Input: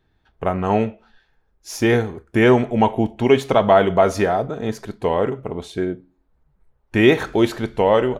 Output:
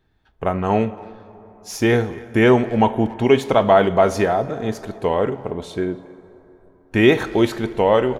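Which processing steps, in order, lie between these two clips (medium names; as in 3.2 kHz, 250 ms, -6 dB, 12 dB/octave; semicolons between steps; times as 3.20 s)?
speakerphone echo 280 ms, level -21 dB; plate-style reverb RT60 4 s, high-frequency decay 0.45×, DRR 17 dB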